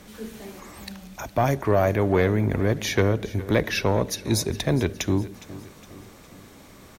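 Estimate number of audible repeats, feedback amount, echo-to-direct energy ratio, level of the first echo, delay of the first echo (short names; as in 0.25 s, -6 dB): 3, 48%, -17.0 dB, -18.0 dB, 0.412 s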